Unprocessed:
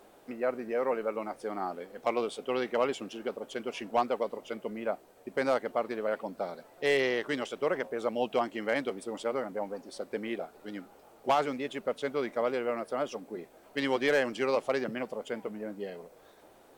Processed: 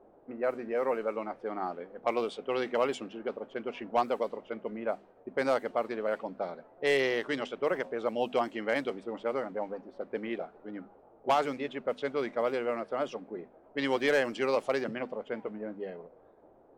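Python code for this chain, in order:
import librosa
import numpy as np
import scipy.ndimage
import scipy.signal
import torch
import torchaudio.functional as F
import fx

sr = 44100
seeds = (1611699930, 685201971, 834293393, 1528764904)

y = fx.hum_notches(x, sr, base_hz=50, count=5)
y = fx.env_lowpass(y, sr, base_hz=710.0, full_db=-25.0)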